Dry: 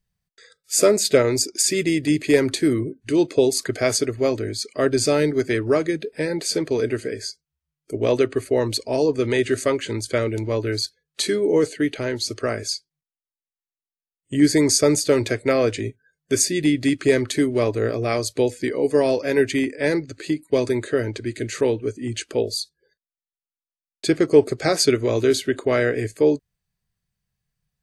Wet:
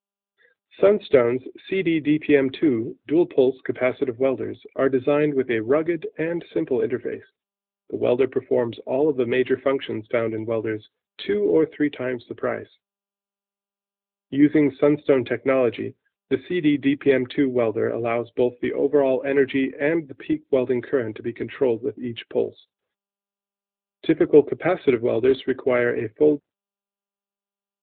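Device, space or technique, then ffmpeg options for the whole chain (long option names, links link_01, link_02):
mobile call with aggressive noise cancelling: -af "highpass=160,afftdn=noise_reduction=26:noise_floor=-43" -ar 8000 -c:a libopencore_amrnb -b:a 10200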